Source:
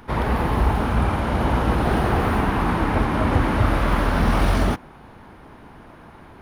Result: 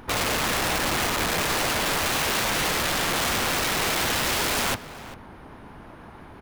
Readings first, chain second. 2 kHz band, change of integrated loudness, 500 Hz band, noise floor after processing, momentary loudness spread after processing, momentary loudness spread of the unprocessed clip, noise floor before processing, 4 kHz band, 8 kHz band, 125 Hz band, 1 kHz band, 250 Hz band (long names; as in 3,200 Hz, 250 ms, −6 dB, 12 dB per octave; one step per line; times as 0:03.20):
+3.0 dB, −2.0 dB, −4.0 dB, −45 dBFS, 2 LU, 2 LU, −45 dBFS, +11.0 dB, +17.0 dB, −13.5 dB, −4.0 dB, −9.5 dB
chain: wrap-around overflow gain 20 dB
pitch vibrato 6 Hz 50 cents
slap from a distant wall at 68 metres, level −15 dB